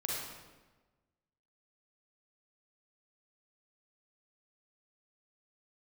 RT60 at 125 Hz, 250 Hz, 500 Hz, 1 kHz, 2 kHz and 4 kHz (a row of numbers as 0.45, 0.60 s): 1.5, 1.4, 1.3, 1.2, 1.1, 0.90 s